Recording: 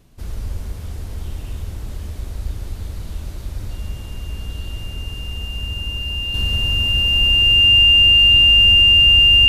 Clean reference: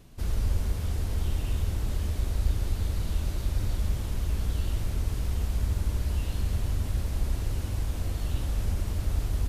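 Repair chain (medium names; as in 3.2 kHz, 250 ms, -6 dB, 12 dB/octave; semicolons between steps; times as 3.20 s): band-stop 2.8 kHz, Q 30; gain correction -5.5 dB, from 6.34 s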